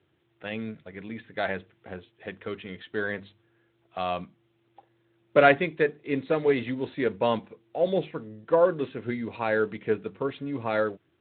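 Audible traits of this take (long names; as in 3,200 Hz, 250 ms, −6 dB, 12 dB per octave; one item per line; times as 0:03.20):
a quantiser's noise floor 12 bits, dither triangular
Speex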